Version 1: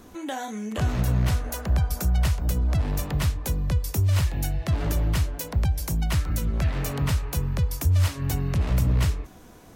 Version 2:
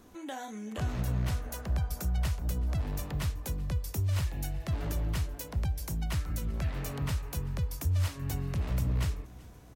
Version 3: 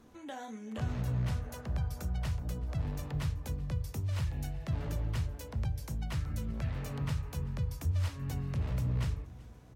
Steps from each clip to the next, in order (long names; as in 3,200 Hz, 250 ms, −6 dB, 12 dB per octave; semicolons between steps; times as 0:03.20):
repeating echo 381 ms, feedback 58%, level −22.5 dB; level −8 dB
high-shelf EQ 8,600 Hz −9.5 dB; on a send at −14.5 dB: convolution reverb RT60 0.35 s, pre-delay 3 ms; on the sum: level −3.5 dB